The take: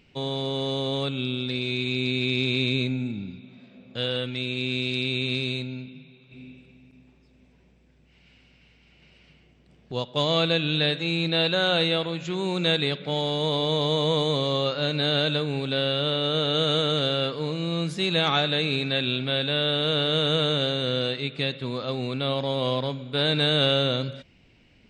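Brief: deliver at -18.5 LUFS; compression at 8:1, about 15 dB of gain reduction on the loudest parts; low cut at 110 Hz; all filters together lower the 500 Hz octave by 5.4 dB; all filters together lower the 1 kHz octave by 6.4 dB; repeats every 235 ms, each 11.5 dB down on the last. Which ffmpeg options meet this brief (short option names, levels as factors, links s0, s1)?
-af "highpass=110,equalizer=f=500:t=o:g=-4.5,equalizer=f=1000:t=o:g=-7.5,acompressor=threshold=0.0158:ratio=8,aecho=1:1:235|470|705:0.266|0.0718|0.0194,volume=10.6"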